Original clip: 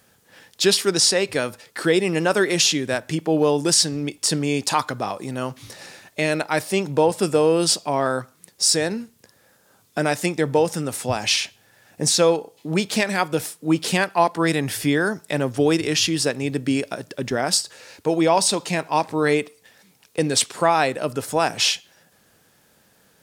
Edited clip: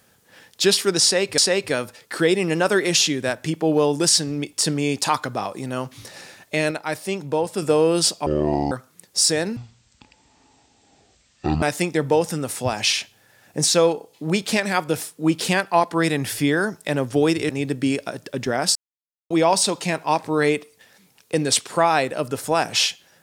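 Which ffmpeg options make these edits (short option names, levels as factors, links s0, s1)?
-filter_complex "[0:a]asplit=11[s0][s1][s2][s3][s4][s5][s6][s7][s8][s9][s10];[s0]atrim=end=1.382[s11];[s1]atrim=start=1.028:end=6.362[s12];[s2]atrim=start=6.358:end=7.272,asetpts=PTS-STARTPTS,volume=0.596[s13];[s3]atrim=start=7.268:end=7.914[s14];[s4]atrim=start=7.91:end=8.16,asetpts=PTS-STARTPTS,asetrate=24255,aresample=44100,atrim=end_sample=20045,asetpts=PTS-STARTPTS[s15];[s5]atrim=start=8.156:end=9.014[s16];[s6]atrim=start=9.01:end=10.06,asetpts=PTS-STARTPTS,asetrate=22491,aresample=44100,atrim=end_sample=90794,asetpts=PTS-STARTPTS[s17];[s7]atrim=start=10.056:end=15.932[s18];[s8]atrim=start=16.338:end=17.6,asetpts=PTS-STARTPTS,afade=t=out:st=1.258:d=0.004:c=hsin[s19];[s9]atrim=start=17.6:end=18.15,asetpts=PTS-STARTPTS,volume=0[s20];[s10]atrim=start=18.15,asetpts=PTS-STARTPTS,afade=t=in:d=0.004:c=hsin[s21];[s11][s12]acrossfade=d=0.004:c1=hsin:c2=hsin[s22];[s22][s13]acrossfade=d=0.004:c1=hsin:c2=hsin[s23];[s23][s14]acrossfade=d=0.004:c1=hsin:c2=hsin[s24];[s24][s15]acrossfade=d=0.004:c1=hsin:c2=hsin[s25];[s25][s16]acrossfade=d=0.004:c1=hsin:c2=hsin[s26];[s26][s17]acrossfade=d=0.004:c1=hsin:c2=hsin[s27];[s27][s18]acrossfade=d=0.004:c1=hsin:c2=hsin[s28];[s19][s20][s21]concat=n=3:v=0:a=1[s29];[s28][s29]acrossfade=d=0.004:c1=hsin:c2=hsin"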